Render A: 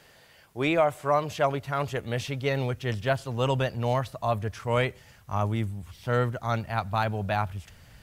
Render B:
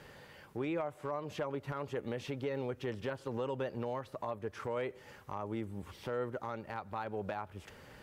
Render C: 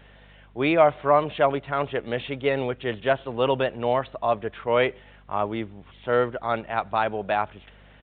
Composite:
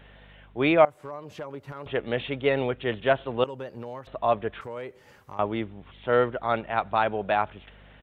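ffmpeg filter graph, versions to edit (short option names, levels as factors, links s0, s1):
-filter_complex "[1:a]asplit=3[s0][s1][s2];[2:a]asplit=4[s3][s4][s5][s6];[s3]atrim=end=0.852[s7];[s0]atrim=start=0.848:end=1.862[s8];[s4]atrim=start=1.858:end=3.442[s9];[s1]atrim=start=3.438:end=4.072[s10];[s5]atrim=start=4.068:end=4.612[s11];[s2]atrim=start=4.608:end=5.392[s12];[s6]atrim=start=5.388[s13];[s7][s8]acrossfade=d=0.004:c1=hsin:c2=hsin[s14];[s14][s9]acrossfade=d=0.004:c1=hsin:c2=hsin[s15];[s15][s10]acrossfade=d=0.004:c1=hsin:c2=hsin[s16];[s16][s11]acrossfade=d=0.004:c1=hsin:c2=hsin[s17];[s17][s12]acrossfade=d=0.004:c1=hsin:c2=hsin[s18];[s18][s13]acrossfade=d=0.004:c1=hsin:c2=hsin"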